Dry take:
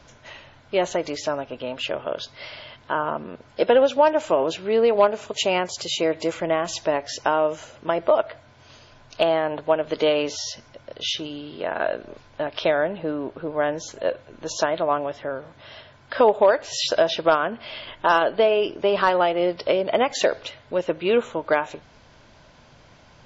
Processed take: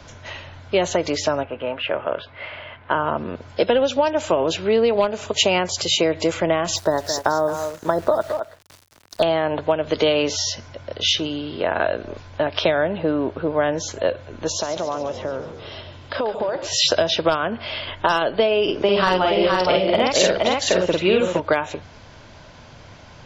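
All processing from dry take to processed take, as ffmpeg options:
-filter_complex "[0:a]asettb=1/sr,asplit=3[a][b][c];[a]atrim=end=1.434[d];[b]atrim=start=1.43:end=2.91,asetpts=PTS-STARTPTS,afade=t=in:d=0.004:c=qsin,afade=t=out:st=1.476:d=0.004:c=qsin,lowpass=f=2.6k:w=0.5412,lowpass=f=2.6k:w=1.3066,lowshelf=f=460:g=-6.5,asplit=2[e][f];[f]adelay=18,volume=-14dB[g];[e][g]amix=inputs=2:normalize=0,atrim=end_sample=65268[h];[c]atrim=start=2.906[i];[d][h]acrossfade=d=0.004:c1=hsin:c2=qsin[j];[j][i]acrossfade=d=0.004:c1=qsin:c2=hsin,asettb=1/sr,asplit=3[k][l][m];[k]atrim=end=6.764[n];[l]atrim=start=6.76:end=9.23,asetpts=PTS-STARTPTS,afade=t=in:d=0.004:c=qsin,afade=t=out:st=2.466:d=0.004:c=qsin,asuperstop=centerf=2600:order=8:qfactor=1.5,aeval=exprs='val(0)*gte(abs(val(0)),0.0075)':c=same,aecho=1:1:217:0.224,atrim=end_sample=108927[o];[m]atrim=start=9.226[p];[n][o]acrossfade=d=0.004:c1=hsin:c2=qsin[q];[q][p]acrossfade=d=0.004:c1=qsin:c2=hsin,asettb=1/sr,asplit=3[r][s][t];[r]atrim=end=14.484[u];[s]atrim=start=14.48:end=16.67,asetpts=PTS-STARTPTS,afade=t=in:d=0.004:c=qsin,afade=t=out:st=2.186:d=0.004:c=qsin,equalizer=f=1.7k:t=o:w=0.69:g=-6,acompressor=threshold=-29dB:ratio=4:attack=3.2:release=140:knee=1:detection=peak,asplit=8[v][w][x][y][z][aa][ab][ac];[w]adelay=141,afreqshift=-48,volume=-11.5dB[ad];[x]adelay=282,afreqshift=-96,volume=-16.1dB[ae];[y]adelay=423,afreqshift=-144,volume=-20.7dB[af];[z]adelay=564,afreqshift=-192,volume=-25.2dB[ag];[aa]adelay=705,afreqshift=-240,volume=-29.8dB[ah];[ab]adelay=846,afreqshift=-288,volume=-34.4dB[ai];[ac]adelay=987,afreqshift=-336,volume=-39dB[aj];[v][ad][ae][af][ag][ah][ai][aj]amix=inputs=8:normalize=0,atrim=end_sample=96579[ak];[t]atrim=start=16.666[al];[u][ak]acrossfade=d=0.004:c1=hsin:c2=qsin[am];[am][al]acrossfade=d=0.004:c1=qsin:c2=hsin,asettb=1/sr,asplit=3[an][ao][ap];[an]atrim=end=18.634[aq];[ao]atrim=start=18.63:end=21.4,asetpts=PTS-STARTPTS,afade=t=in:d=0.004:c=qsin,afade=t=out:st=2.766:d=0.004:c=qsin,asplit=2[ar][as];[as]adelay=49,volume=-2dB[at];[ar][at]amix=inputs=2:normalize=0,atrim=end_sample=122157,aecho=1:1:468:0.668,atrim=end_sample=122157[au];[ap]atrim=start=21.396[av];[aq][au]acrossfade=d=0.004:c1=hsin:c2=qsin[aw];[aw][av]acrossfade=d=0.004:c1=qsin:c2=hsin,equalizer=f=91:w=6.3:g=10.5,acrossover=split=210|3000[ax][ay][az];[ay]acompressor=threshold=-23dB:ratio=6[ba];[ax][ba][az]amix=inputs=3:normalize=0,volume=7dB"

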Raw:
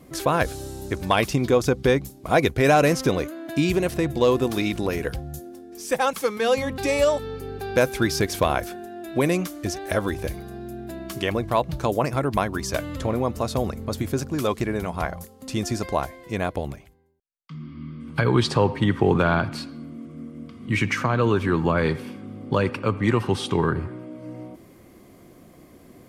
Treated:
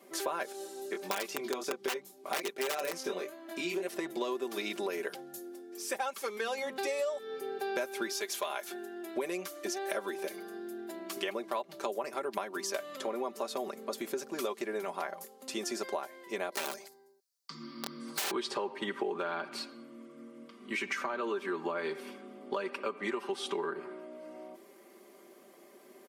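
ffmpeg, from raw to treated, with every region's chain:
-filter_complex "[0:a]asettb=1/sr,asplit=3[a][b][c];[a]atrim=end=0.524[d];[b]atrim=start=0.52:end=3.87,asetpts=PTS-STARTPTS,afade=t=in:d=0.004:c=qsin,afade=t=out:st=3.346:d=0.004:c=qsin,bandreject=f=50:t=h:w=6,bandreject=f=100:t=h:w=6,bandreject=f=150:t=h:w=6,flanger=delay=20:depth=3.3:speed=1.4,aeval=exprs='(mod(4.47*val(0)+1,2)-1)/4.47':c=same[e];[c]atrim=start=3.866[f];[d][e]acrossfade=d=0.004:c1=hsin:c2=qsin[g];[g][f]acrossfade=d=0.004:c1=qsin:c2=hsin,asettb=1/sr,asplit=3[h][i][j];[h]atrim=end=8.124[k];[i]atrim=start=8.12:end=8.71,asetpts=PTS-STARTPTS,afade=t=in:d=0.004:c=qsin,afade=t=out:st=0.586:d=0.004:c=qsin,highpass=f=1.1k:p=1,aecho=1:1:4.8:0.45,atrim=end_sample=26019,aeval=exprs='val(0)+0.00501*(sin(2*PI*60*n/s)+sin(2*PI*2*60*n/s)/2+sin(2*PI*3*60*n/s)/3+sin(2*PI*4*60*n/s)/4+sin(2*PI*5*60*n/s)/5)':c=same[l];[j]atrim=start=8.706[m];[k][l]acrossfade=d=0.004:c1=hsin:c2=qsin[n];[n][m]acrossfade=d=0.004:c1=qsin:c2=hsin,asettb=1/sr,asplit=3[o][p][q];[o]atrim=end=16.524[r];[p]atrim=start=16.52:end=18.31,asetpts=PTS-STARTPTS,afade=t=in:d=0.004:c=qsin,afade=t=out:st=1.786:d=0.004:c=qsin,highshelf=f=3.7k:t=q:w=3:g=7,acontrast=86,aeval=exprs='(mod(8.91*val(0)+1,2)-1)/8.91':c=same[s];[q]atrim=start=18.306[t];[r][s]acrossfade=d=0.004:c1=hsin:c2=qsin[u];[u][t]acrossfade=d=0.004:c1=qsin:c2=hsin,highpass=f=310:w=0.5412,highpass=f=310:w=1.3066,aecho=1:1:5.1:0.73,acompressor=threshold=-26dB:ratio=6,volume=-5.5dB"

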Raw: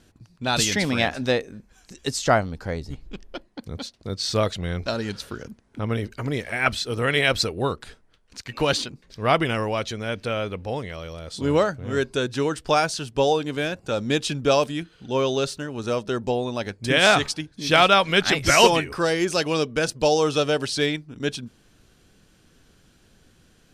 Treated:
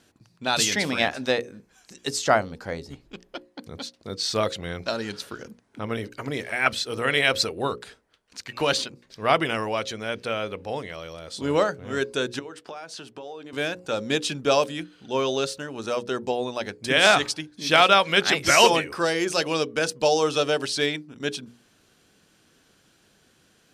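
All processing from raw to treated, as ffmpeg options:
-filter_complex "[0:a]asettb=1/sr,asplit=3[a][b][c];[a]atrim=end=12.394[d];[b]atrim=start=12.39:end=13.53,asetpts=PTS-STARTPTS,afade=t=in:d=0.004:c=qsin,afade=t=out:st=1.136:d=0.004:c=qsin,highpass=190,highshelf=f=4.2k:g=-10.5,acompressor=threshold=-33dB:ratio=10:attack=3.2:release=140:knee=1:detection=peak[e];[c]atrim=start=13.526[f];[d][e]acrossfade=d=0.004:c1=hsin:c2=qsin[g];[g][f]acrossfade=d=0.004:c1=qsin:c2=hsin,highpass=f=250:p=1,bandreject=f=60:t=h:w=6,bandreject=f=120:t=h:w=6,bandreject=f=180:t=h:w=6,bandreject=f=240:t=h:w=6,bandreject=f=300:t=h:w=6,bandreject=f=360:t=h:w=6,bandreject=f=420:t=h:w=6,bandreject=f=480:t=h:w=6,bandreject=f=540:t=h:w=6"

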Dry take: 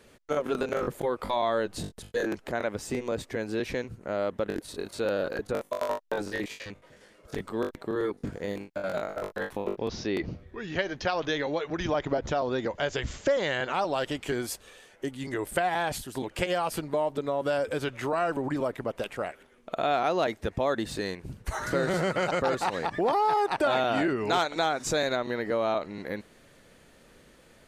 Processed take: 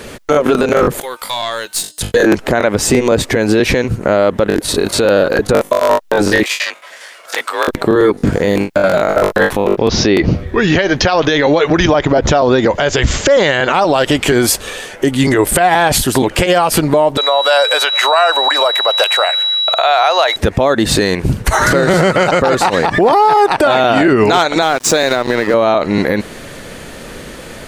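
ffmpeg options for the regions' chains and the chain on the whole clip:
-filter_complex "[0:a]asettb=1/sr,asplit=3[a][b][c];[a]atrim=end=1.004[d];[b]atrim=start=1:end=2.01,asetpts=PTS-STARTPTS,afade=t=in:d=0.004:c=qsin,afade=t=out:st=1.006:d=0.004:c=qsin,aderivative,bandreject=f=304.1:t=h:w=4,bandreject=f=608.2:t=h:w=4,bandreject=f=912.3:t=h:w=4,bandreject=f=1.2164k:t=h:w=4,bandreject=f=1.5205k:t=h:w=4,bandreject=f=1.8246k:t=h:w=4,bandreject=f=2.1287k:t=h:w=4,bandreject=f=2.4328k:t=h:w=4,bandreject=f=2.7369k:t=h:w=4,bandreject=f=3.041k:t=h:w=4,bandreject=f=3.3451k:t=h:w=4,bandreject=f=3.6492k:t=h:w=4,bandreject=f=3.9533k:t=h:w=4,bandreject=f=4.2574k:t=h:w=4,bandreject=f=4.5615k:t=h:w=4,bandreject=f=4.8656k:t=h:w=4,bandreject=f=5.1697k:t=h:w=4,bandreject=f=5.4738k:t=h:w=4,bandreject=f=5.7779k:t=h:w=4,bandreject=f=6.082k:t=h:w=4,bandreject=f=6.3861k:t=h:w=4,bandreject=f=6.6902k:t=h:w=4,bandreject=f=6.9943k:t=h:w=4,bandreject=f=7.2984k:t=h:w=4,bandreject=f=7.6025k:t=h:w=4,bandreject=f=7.9066k:t=h:w=4,bandreject=f=8.2107k:t=h:w=4,bandreject=f=8.5148k:t=h:w=4,bandreject=f=8.8189k:t=h:w=4,bandreject=f=9.123k:t=h:w=4,bandreject=f=9.4271k:t=h:w=4,bandreject=f=9.7312k:t=h:w=4,bandreject=f=10.0353k:t=h:w=4,bandreject=f=10.3394k:t=h:w=4,aeval=exprs='(tanh(50.1*val(0)+0.3)-tanh(0.3))/50.1':c=same[e];[c]atrim=start=2.006[f];[d][e]acrossfade=d=0.004:c1=hsin:c2=qsin[g];[g][f]acrossfade=d=0.004:c1=qsin:c2=hsin,asettb=1/sr,asplit=3[h][i][j];[h]atrim=end=6.434[k];[i]atrim=start=6.43:end=7.68,asetpts=PTS-STARTPTS,afade=t=in:d=0.004:c=qsin,afade=t=out:st=1.246:d=0.004:c=qsin,aeval=exprs='if(lt(val(0),0),0.708*val(0),val(0))':c=same,highpass=990,afreqshift=48[l];[j]atrim=start=7.676[m];[k][l]acrossfade=d=0.004:c1=hsin:c2=qsin[n];[n][m]acrossfade=d=0.004:c1=qsin:c2=hsin,asettb=1/sr,asplit=3[o][p][q];[o]atrim=end=17.174[r];[p]atrim=start=17.17:end=20.36,asetpts=PTS-STARTPTS,afade=t=in:d=0.004:c=qsin,afade=t=out:st=3.186:d=0.004:c=qsin,highpass=f=640:w=0.5412,highpass=f=640:w=1.3066,aeval=exprs='val(0)+0.0126*sin(2*PI*3900*n/s)':c=same[s];[q]atrim=start=20.356[t];[r][s]acrossfade=d=0.004:c1=hsin:c2=qsin[u];[u][t]acrossfade=d=0.004:c1=qsin:c2=hsin,asettb=1/sr,asplit=3[v][w][x];[v]atrim=end=24.624[y];[w]atrim=start=24.62:end=25.54,asetpts=PTS-STARTPTS,afade=t=in:d=0.004:c=qsin,afade=t=out:st=0.916:d=0.004:c=qsin,highpass=200,aeval=exprs='sgn(val(0))*max(abs(val(0))-0.00891,0)':c=same[z];[x]atrim=start=25.536[aa];[y][z]acrossfade=d=0.004:c1=hsin:c2=qsin[ab];[ab][aa]acrossfade=d=0.004:c1=qsin:c2=hsin,acompressor=threshold=-31dB:ratio=6,alimiter=level_in=27dB:limit=-1dB:release=50:level=0:latency=1,volume=-1dB"

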